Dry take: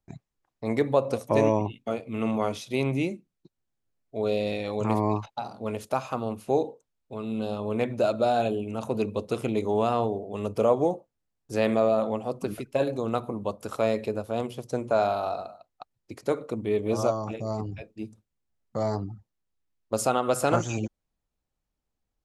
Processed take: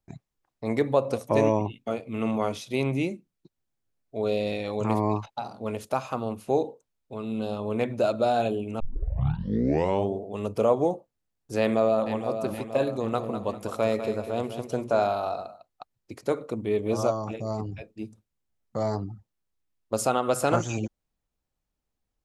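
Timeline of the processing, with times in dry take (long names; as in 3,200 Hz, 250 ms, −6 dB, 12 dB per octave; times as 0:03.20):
0:08.80: tape start 1.40 s
0:11.59–0:12.38: delay throw 470 ms, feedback 55%, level −9 dB
0:12.92–0:15.08: repeating echo 198 ms, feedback 37%, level −9 dB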